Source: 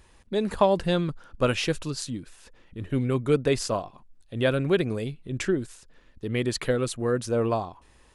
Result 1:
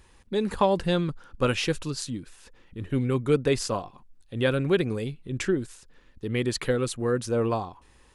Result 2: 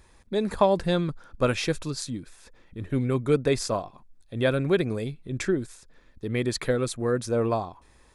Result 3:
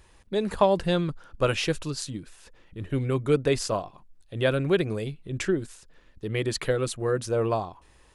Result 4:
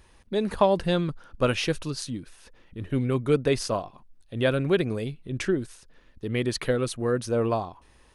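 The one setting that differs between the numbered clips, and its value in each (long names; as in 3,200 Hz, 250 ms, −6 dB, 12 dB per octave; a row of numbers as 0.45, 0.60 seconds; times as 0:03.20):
notch filter, centre frequency: 640, 2,900, 240, 7,400 Hertz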